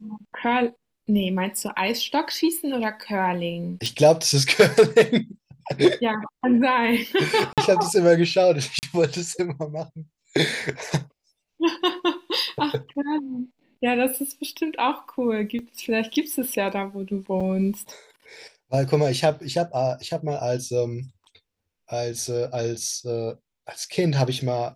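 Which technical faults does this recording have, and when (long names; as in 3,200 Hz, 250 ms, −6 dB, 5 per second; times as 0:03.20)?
0:03.86: click
0:07.53–0:07.58: drop-out 47 ms
0:08.79–0:08.83: drop-out 39 ms
0:15.59: drop-out 2.5 ms
0:17.40–0:17.41: drop-out 5.1 ms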